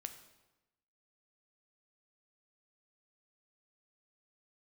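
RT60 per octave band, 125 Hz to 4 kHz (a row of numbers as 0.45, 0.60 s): 1.1, 1.1, 1.0, 1.0, 0.90, 0.85 s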